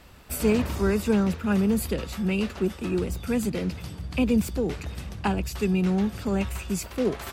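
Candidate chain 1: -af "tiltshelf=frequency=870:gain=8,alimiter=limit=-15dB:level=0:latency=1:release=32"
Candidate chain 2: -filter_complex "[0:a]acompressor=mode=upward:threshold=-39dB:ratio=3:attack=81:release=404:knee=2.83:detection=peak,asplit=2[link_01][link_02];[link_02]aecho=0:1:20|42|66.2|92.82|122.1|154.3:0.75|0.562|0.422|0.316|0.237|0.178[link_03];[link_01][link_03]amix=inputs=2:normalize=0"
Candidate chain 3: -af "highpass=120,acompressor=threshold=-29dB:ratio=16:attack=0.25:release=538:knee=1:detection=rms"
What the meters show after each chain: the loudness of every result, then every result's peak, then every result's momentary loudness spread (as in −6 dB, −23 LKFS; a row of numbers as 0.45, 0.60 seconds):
−24.0, −23.0, −38.0 LKFS; −15.0, −6.5, −27.0 dBFS; 5, 8, 4 LU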